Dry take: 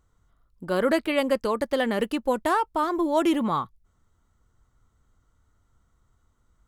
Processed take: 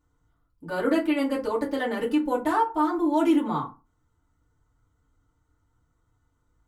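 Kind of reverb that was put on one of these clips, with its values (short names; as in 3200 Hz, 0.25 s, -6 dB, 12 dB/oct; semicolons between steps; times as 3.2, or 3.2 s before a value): FDN reverb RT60 0.3 s, low-frequency decay 1.2×, high-frequency decay 0.55×, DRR -5.5 dB; gain -9.5 dB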